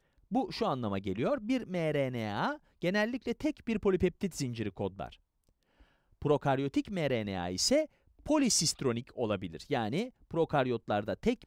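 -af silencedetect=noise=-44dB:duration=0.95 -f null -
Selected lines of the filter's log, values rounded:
silence_start: 5.14
silence_end: 6.22 | silence_duration: 1.08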